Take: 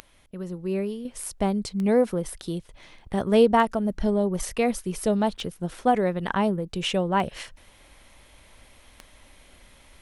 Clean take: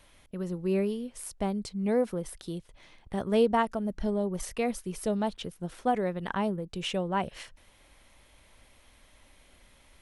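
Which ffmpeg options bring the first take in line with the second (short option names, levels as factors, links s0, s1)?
-af "adeclick=t=4,asetnsamples=n=441:p=0,asendcmd='1.05 volume volume -6dB',volume=1"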